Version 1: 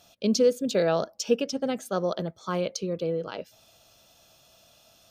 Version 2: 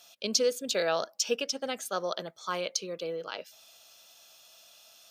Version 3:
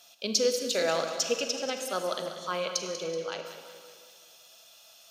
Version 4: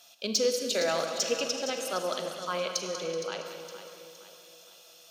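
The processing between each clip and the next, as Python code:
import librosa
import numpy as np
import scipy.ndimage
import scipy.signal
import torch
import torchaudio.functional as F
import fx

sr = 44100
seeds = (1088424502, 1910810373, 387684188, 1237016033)

y1 = fx.highpass(x, sr, hz=1500.0, slope=6)
y1 = F.gain(torch.from_numpy(y1), 4.0).numpy()
y2 = fx.rev_schroeder(y1, sr, rt60_s=1.8, comb_ms=33, drr_db=6.5)
y2 = fx.echo_warbled(y2, sr, ms=189, feedback_pct=51, rate_hz=2.8, cents=52, wet_db=-11.5)
y3 = 10.0 ** (-14.5 / 20.0) * np.tanh(y2 / 10.0 ** (-14.5 / 20.0))
y3 = fx.echo_feedback(y3, sr, ms=464, feedback_pct=44, wet_db=-12.0)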